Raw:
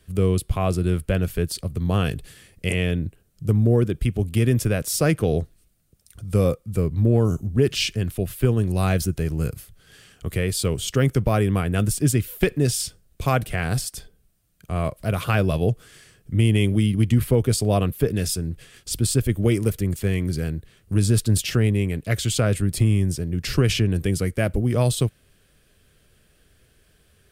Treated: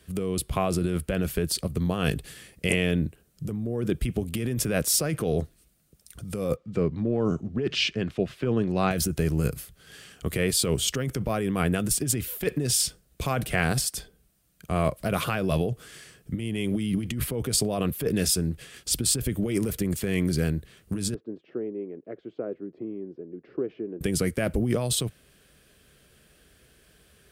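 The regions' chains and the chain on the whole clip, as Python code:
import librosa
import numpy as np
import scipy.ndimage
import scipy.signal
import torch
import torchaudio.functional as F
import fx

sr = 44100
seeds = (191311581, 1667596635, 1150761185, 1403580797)

y = fx.chain(x, sr, fx.highpass(hz=170.0, slope=6),
    fx.air_absorb(metres=160.0), at=(6.56, 8.91))
y = fx.chain(y, sr, fx.ladder_bandpass(hz=420.0, resonance_pct=45),
    fx.air_absorb(metres=140.0), at=(21.14, 24.01))
y = scipy.signal.sosfilt(scipy.signal.butter(2, 48.0, 'highpass', fs=sr, output='sos'), y)
y = fx.over_compress(y, sr, threshold_db=-23.0, ratio=-1.0)
y = fx.peak_eq(y, sr, hz=97.0, db=-12.5, octaves=0.39)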